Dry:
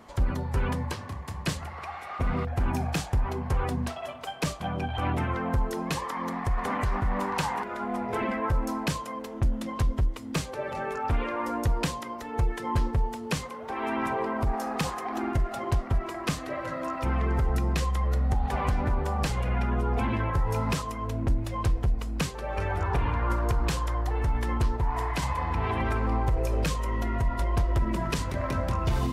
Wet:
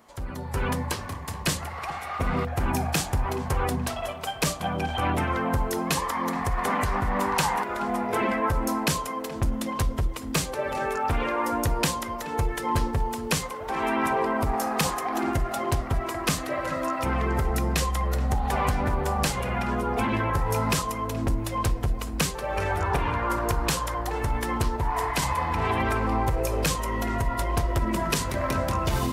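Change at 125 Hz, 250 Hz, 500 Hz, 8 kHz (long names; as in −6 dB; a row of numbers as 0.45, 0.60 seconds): −0.5, +2.5, +4.0, +9.5 decibels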